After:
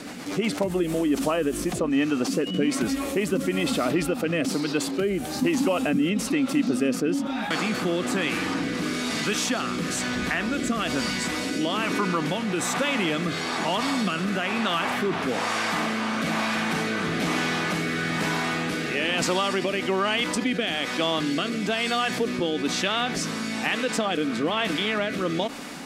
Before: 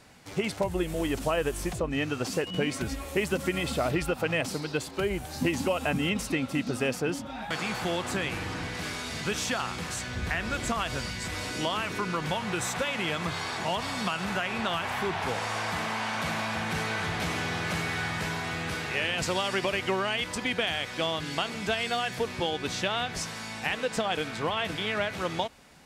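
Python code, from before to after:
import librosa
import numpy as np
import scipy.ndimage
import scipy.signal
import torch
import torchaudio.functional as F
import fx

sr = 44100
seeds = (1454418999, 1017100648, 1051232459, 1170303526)

y = fx.low_shelf_res(x, sr, hz=140.0, db=-11.5, q=1.5)
y = fx.small_body(y, sr, hz=(280.0, 1200.0), ring_ms=45, db=7)
y = fx.rotary_switch(y, sr, hz=8.0, then_hz=1.1, switch_at_s=0.45)
y = fx.env_flatten(y, sr, amount_pct=50)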